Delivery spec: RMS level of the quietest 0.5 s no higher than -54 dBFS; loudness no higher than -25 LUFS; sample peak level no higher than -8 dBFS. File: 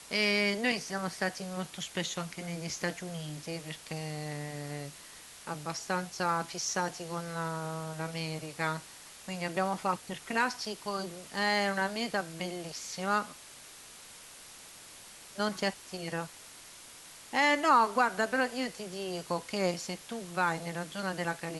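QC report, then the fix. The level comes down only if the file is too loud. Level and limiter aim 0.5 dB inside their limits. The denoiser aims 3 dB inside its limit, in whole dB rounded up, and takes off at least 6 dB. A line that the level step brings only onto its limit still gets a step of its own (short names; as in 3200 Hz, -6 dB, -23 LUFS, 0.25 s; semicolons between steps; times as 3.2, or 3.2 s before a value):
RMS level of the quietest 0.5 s -51 dBFS: fail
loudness -33.0 LUFS: OK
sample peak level -13.5 dBFS: OK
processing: denoiser 6 dB, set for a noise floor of -51 dBFS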